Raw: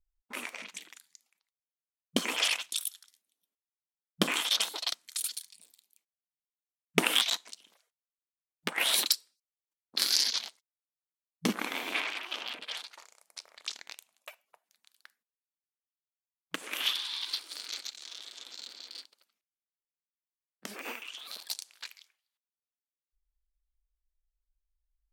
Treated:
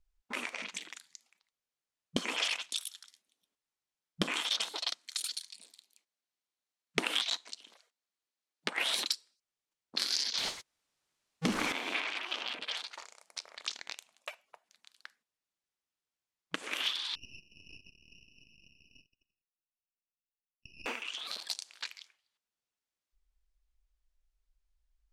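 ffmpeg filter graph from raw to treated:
ffmpeg -i in.wav -filter_complex "[0:a]asettb=1/sr,asplit=3[link_01][link_02][link_03];[link_01]atrim=end=4.964[link_04];[link_02]atrim=start=4.96:end=8.81,asetpts=PTS-STARTPTS,afade=type=in:duration=0.004:curve=qsin,afade=type=out:start_time=3.846:duration=0.004:curve=qsin,highpass=frequency=200:width=0.5412,highpass=frequency=200:width=1.3066,equalizer=frequency=4200:width=4.8:gain=3.5[link_05];[link_03]atrim=start=8.806[link_06];[link_04][link_05]acrossfade=duration=0.004:curve1=hsin:curve2=qsin[link_07];[link_07][link_06]acrossfade=duration=0.004:curve1=qsin:curve2=hsin,asettb=1/sr,asplit=3[link_08][link_09][link_10];[link_08]atrim=end=10.374[link_11];[link_09]atrim=start=10.37:end=11.72,asetpts=PTS-STARTPTS,afade=type=in:duration=0.004:curve=qsin,afade=type=out:start_time=1.346:duration=0.004:curve=qsin,aeval=exprs='val(0)+0.5*0.0473*sgn(val(0))':channel_layout=same,agate=range=-46dB:threshold=-33dB:ratio=16:release=100:detection=peak[link_12];[link_10]atrim=start=11.716[link_13];[link_11][link_12]acrossfade=duration=0.004:curve1=hsin:curve2=qsin[link_14];[link_14][link_13]acrossfade=duration=0.004:curve1=qsin:curve2=hsin,asettb=1/sr,asplit=3[link_15][link_16][link_17];[link_15]atrim=end=17.154[link_18];[link_16]atrim=start=17.15:end=20.86,asetpts=PTS-STARTPTS,afade=type=in:duration=0.004:curve=qsin,afade=type=out:start_time=3.706:duration=0.004:curve=qsin,asuperpass=centerf=2700:order=12:qfactor=6.3,aeval=exprs='max(val(0),0)':channel_layout=same[link_19];[link_17]atrim=start=20.856[link_20];[link_18][link_19]acrossfade=duration=0.004:curve1=hsin:curve2=qsin[link_21];[link_21][link_20]acrossfade=duration=0.004:curve1=qsin:curve2=hsin,lowpass=7600,acompressor=threshold=-42dB:ratio=2,volume=5.5dB" out.wav

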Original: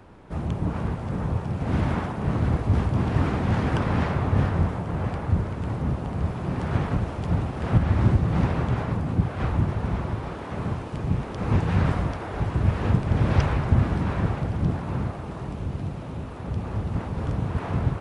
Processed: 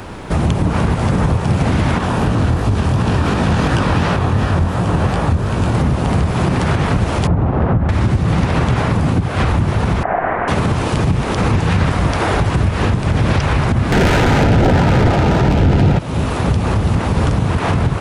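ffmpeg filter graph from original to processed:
ffmpeg -i in.wav -filter_complex "[0:a]asettb=1/sr,asplit=3[link_01][link_02][link_03];[link_01]atrim=end=1.984[link_04];[link_02]atrim=start=1.98:end=5.75,asetpts=PTS-STARTPTS,afade=type=in:duration=0.004:curve=qsin,afade=type=out:start_time=3.766:duration=0.004:curve=qsin,bandreject=frequency=2100:width=8.6,flanger=delay=17:depth=7.9:speed=2.8[link_05];[link_03]atrim=start=5.746[link_06];[link_04][link_05]acrossfade=duration=0.004:curve1=hsin:curve2=qsin[link_07];[link_07][link_06]acrossfade=duration=0.004:curve1=qsin:curve2=hsin,asettb=1/sr,asplit=3[link_08][link_09][link_10];[link_08]atrim=end=7.274[link_11];[link_09]atrim=start=7.27:end=7.89,asetpts=PTS-STARTPTS,afade=type=in:duration=0.004:curve=qsin,afade=type=out:start_time=0.616:duration=0.004:curve=qsin,lowpass=1100,acompressor=threshold=-27dB:ratio=2:attack=3.2:release=140:knee=1:detection=peak[link_12];[link_10]atrim=start=7.886[link_13];[link_11][link_12]acrossfade=duration=0.004:curve1=hsin:curve2=qsin[link_14];[link_14][link_13]acrossfade=duration=0.004:curve1=qsin:curve2=hsin,asettb=1/sr,asplit=3[link_15][link_16][link_17];[link_15]atrim=end=10.034[link_18];[link_16]atrim=start=10.03:end=10.48,asetpts=PTS-STARTPTS,afade=type=in:duration=0.004:curve=qsin,afade=type=out:start_time=0.446:duration=0.004:curve=qsin,lowpass=frequency=1500:width=0.5412,lowpass=frequency=1500:width=1.3066,afreqshift=-81,aeval=exprs='val(0)*sin(2*PI*710*n/s)':channel_layout=same[link_19];[link_17]atrim=start=10.476[link_20];[link_18][link_19]acrossfade=duration=0.004:curve1=hsin:curve2=qsin[link_21];[link_21][link_20]acrossfade=duration=0.004:curve1=qsin:curve2=hsin,asettb=1/sr,asplit=3[link_22][link_23][link_24];[link_22]atrim=end=13.924[link_25];[link_23]atrim=start=13.92:end=15.99,asetpts=PTS-STARTPTS,afade=type=in:duration=0.004:curve=qsin,afade=type=out:start_time=2.066:duration=0.004:curve=qsin,aeval=exprs='0.266*sin(PI/2*4.47*val(0)/0.266)':channel_layout=same,adynamicsmooth=sensitivity=2.5:basefreq=1600,asuperstop=centerf=1100:order=4:qfactor=5.9[link_26];[link_24]atrim=start=15.986[link_27];[link_25][link_26]acrossfade=duration=0.004:curve1=hsin:curve2=qsin[link_28];[link_28][link_27]acrossfade=duration=0.004:curve1=qsin:curve2=hsin,highshelf=frequency=2400:gain=9.5,acompressor=threshold=-29dB:ratio=4,alimiter=level_in=23dB:limit=-1dB:release=50:level=0:latency=1,volume=-5dB" out.wav

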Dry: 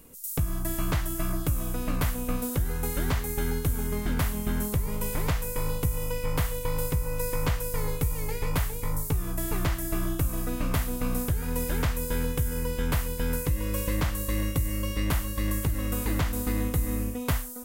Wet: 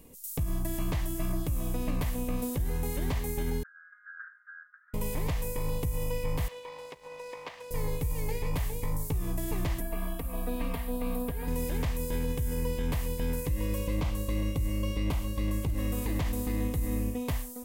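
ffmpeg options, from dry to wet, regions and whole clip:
ffmpeg -i in.wav -filter_complex "[0:a]asettb=1/sr,asplit=3[link_01][link_02][link_03];[link_01]atrim=end=3.634[link_04];[link_02]atrim=start=3.63:end=4.94,asetpts=PTS-STARTPTS,afade=type=in:duration=0.004:curve=qsin,afade=type=out:start_time=1.306:duration=0.004:curve=qsin,aecho=1:1:6.3:0.46,atrim=end_sample=57771,acontrast=52,asuperpass=centerf=1500:order=8:qfactor=4.4[link_05];[link_03]atrim=start=4.936[link_06];[link_04][link_05]acrossfade=duration=0.004:curve1=hsin:curve2=qsin[link_07];[link_07][link_06]acrossfade=duration=0.004:curve1=qsin:curve2=hsin,asettb=1/sr,asplit=3[link_08][link_09][link_10];[link_08]atrim=end=6.484[link_11];[link_09]atrim=start=6.48:end=7.71,asetpts=PTS-STARTPTS,afade=type=in:duration=0.004:curve=qsin,afade=type=out:start_time=1.226:duration=0.004:curve=qsin,acompressor=threshold=-26dB:ratio=5:attack=3.2:release=140:knee=1:detection=peak,highpass=590,lowpass=4200,aeval=exprs='sgn(val(0))*max(abs(val(0))-0.00224,0)':channel_layout=same[link_12];[link_10]atrim=start=7.706[link_13];[link_11][link_12]acrossfade=duration=0.004:curve1=hsin:curve2=qsin[link_14];[link_14][link_13]acrossfade=duration=0.004:curve1=qsin:curve2=hsin,asettb=1/sr,asplit=3[link_15][link_16][link_17];[link_15]atrim=end=9.804[link_18];[link_16]atrim=start=9.8:end=11.48,asetpts=PTS-STARTPTS,afade=type=in:duration=0.004:curve=qsin,afade=type=out:start_time=1.676:duration=0.004:curve=qsin,equalizer=frequency=6300:width=1.6:gain=-11.5,acrossover=split=470|2200[link_19][link_20][link_21];[link_19]acompressor=threshold=-35dB:ratio=4[link_22];[link_20]acompressor=threshold=-40dB:ratio=4[link_23];[link_21]acompressor=threshold=-43dB:ratio=4[link_24];[link_22][link_23][link_24]amix=inputs=3:normalize=0,aecho=1:1:4.3:0.99,atrim=end_sample=74088[link_25];[link_17]atrim=start=11.476[link_26];[link_18][link_25]acrossfade=duration=0.004:curve1=hsin:curve2=qsin[link_27];[link_27][link_26]acrossfade=duration=0.004:curve1=qsin:curve2=hsin,asettb=1/sr,asplit=3[link_28][link_29][link_30];[link_28]atrim=end=13.784[link_31];[link_29]atrim=start=13.78:end=15.78,asetpts=PTS-STARTPTS,afade=type=in:duration=0.004:curve=qsin,afade=type=out:start_time=1.996:duration=0.004:curve=qsin,highshelf=frequency=6700:gain=-6.5,bandreject=frequency=1800:width=5.6[link_32];[link_30]atrim=start=15.776[link_33];[link_31][link_32]acrossfade=duration=0.004:curve1=hsin:curve2=qsin[link_34];[link_34][link_33]acrossfade=duration=0.004:curve1=qsin:curve2=hsin,equalizer=frequency=1400:width_type=o:width=0.33:gain=-13,alimiter=limit=-21.5dB:level=0:latency=1,highshelf=frequency=4300:gain=-5" out.wav

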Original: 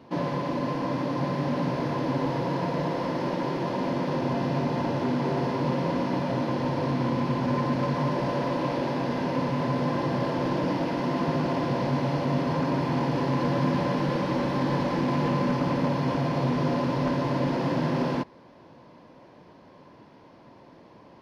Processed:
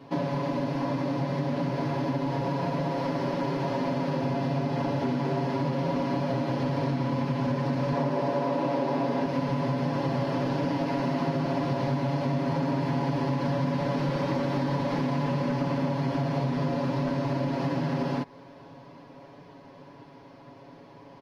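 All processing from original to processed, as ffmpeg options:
ffmpeg -i in.wav -filter_complex "[0:a]asettb=1/sr,asplit=3[link_01][link_02][link_03];[link_01]atrim=end=7.924[link_04];[link_02]atrim=start=7.92:end=9.26,asetpts=PTS-STARTPTS,afade=type=in:duration=0.004:curve=qsin,afade=type=out:start_time=1.336:duration=0.004:curve=qsin,highpass=130,equalizer=frequency=520:width=0.42:gain=6[link_05];[link_03]atrim=start=9.256[link_06];[link_04][link_05]acrossfade=duration=0.004:curve1=hsin:curve2=qsin[link_07];[link_07][link_06]acrossfade=duration=0.004:curve1=qsin:curve2=hsin,dynaudnorm=framelen=590:gausssize=17:maxgain=6dB,aecho=1:1:7.2:0.91,acompressor=threshold=-25dB:ratio=6" out.wav

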